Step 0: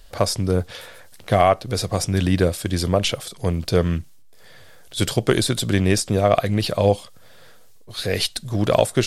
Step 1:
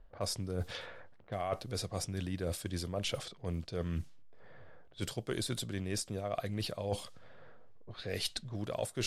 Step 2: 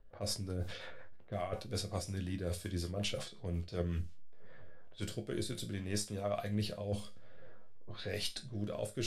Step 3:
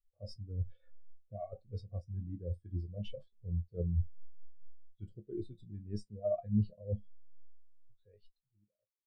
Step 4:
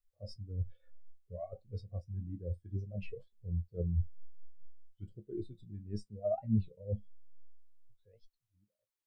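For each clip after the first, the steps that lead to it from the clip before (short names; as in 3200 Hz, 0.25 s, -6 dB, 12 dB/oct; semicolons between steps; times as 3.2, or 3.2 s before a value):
low-pass opened by the level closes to 1100 Hz, open at -18 dBFS; reverse; compressor 10:1, threshold -27 dBFS, peak gain reduction 16.5 dB; reverse; gain -5.5 dB
resonator bank C#2 major, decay 0.24 s; rotary speaker horn 5.5 Hz, later 0.6 Hz, at 4.2; gain +10 dB
ending faded out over 2.09 s; spectral expander 2.5:1; gain +1.5 dB
record warp 33 1/3 rpm, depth 250 cents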